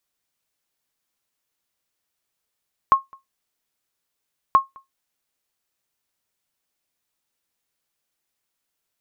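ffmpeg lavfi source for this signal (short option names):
-f lavfi -i "aevalsrc='0.531*(sin(2*PI*1080*mod(t,1.63))*exp(-6.91*mod(t,1.63)/0.16)+0.0335*sin(2*PI*1080*max(mod(t,1.63)-0.21,0))*exp(-6.91*max(mod(t,1.63)-0.21,0)/0.16))':d=3.26:s=44100"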